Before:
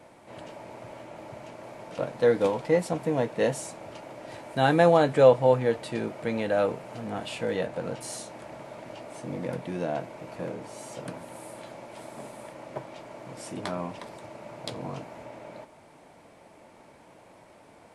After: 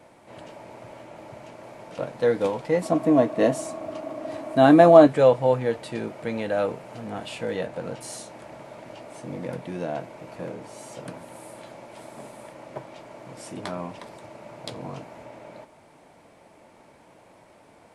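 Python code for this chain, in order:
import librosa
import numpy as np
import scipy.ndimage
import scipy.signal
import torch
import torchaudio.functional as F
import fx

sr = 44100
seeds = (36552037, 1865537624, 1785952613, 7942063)

y = fx.small_body(x, sr, hz=(290.0, 640.0, 1100.0), ring_ms=45, db=14, at=(2.82, 5.07))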